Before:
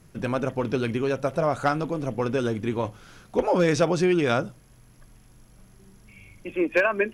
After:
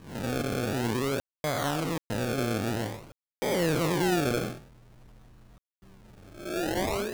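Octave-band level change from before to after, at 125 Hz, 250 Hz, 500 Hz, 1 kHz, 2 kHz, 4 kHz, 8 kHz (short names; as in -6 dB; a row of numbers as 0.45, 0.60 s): -2.5, -4.0, -6.5, -4.5, -5.5, +2.5, +4.0 dB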